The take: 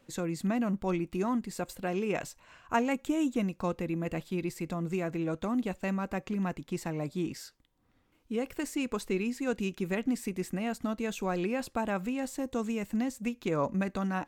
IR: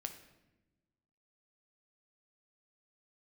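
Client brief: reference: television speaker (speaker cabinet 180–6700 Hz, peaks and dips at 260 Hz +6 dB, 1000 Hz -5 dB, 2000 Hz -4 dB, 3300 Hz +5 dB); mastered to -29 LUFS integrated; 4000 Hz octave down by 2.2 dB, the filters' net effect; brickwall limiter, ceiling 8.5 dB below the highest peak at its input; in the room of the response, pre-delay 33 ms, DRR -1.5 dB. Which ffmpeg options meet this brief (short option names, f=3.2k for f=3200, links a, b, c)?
-filter_complex "[0:a]equalizer=f=4k:t=o:g=-6,alimiter=limit=-23.5dB:level=0:latency=1,asplit=2[a][b];[1:a]atrim=start_sample=2205,adelay=33[c];[b][c]afir=irnorm=-1:irlink=0,volume=4dB[d];[a][d]amix=inputs=2:normalize=0,highpass=f=180:w=0.5412,highpass=f=180:w=1.3066,equalizer=f=260:t=q:w=4:g=6,equalizer=f=1k:t=q:w=4:g=-5,equalizer=f=2k:t=q:w=4:g=-4,equalizer=f=3.3k:t=q:w=4:g=5,lowpass=f=6.7k:w=0.5412,lowpass=f=6.7k:w=1.3066"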